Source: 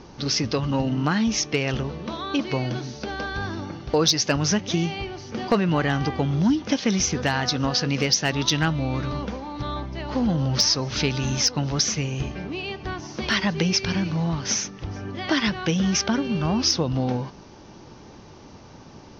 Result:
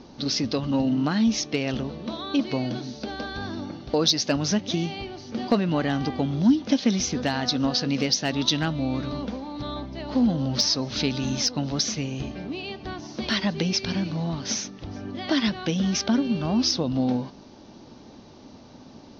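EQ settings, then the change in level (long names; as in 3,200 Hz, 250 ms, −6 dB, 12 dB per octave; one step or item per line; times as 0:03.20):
graphic EQ with 15 bands 250 Hz +10 dB, 630 Hz +6 dB, 4,000 Hz +8 dB
−6.5 dB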